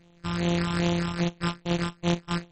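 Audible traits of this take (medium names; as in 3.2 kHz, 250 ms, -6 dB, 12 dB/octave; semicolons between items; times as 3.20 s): a buzz of ramps at a fixed pitch in blocks of 256 samples; phasing stages 6, 2.5 Hz, lowest notch 530–1700 Hz; aliases and images of a low sample rate 6.5 kHz, jitter 0%; MP3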